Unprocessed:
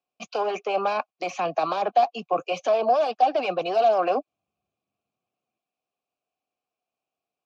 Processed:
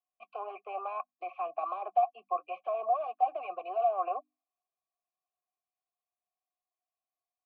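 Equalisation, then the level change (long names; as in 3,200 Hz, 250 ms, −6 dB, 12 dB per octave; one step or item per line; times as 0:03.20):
formant filter a
loudspeaker in its box 220–3,500 Hz, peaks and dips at 370 Hz +9 dB, 1,100 Hz +10 dB, 2,100 Hz +7 dB
mains-hum notches 50/100/150/200/250/300 Hz
−7.5 dB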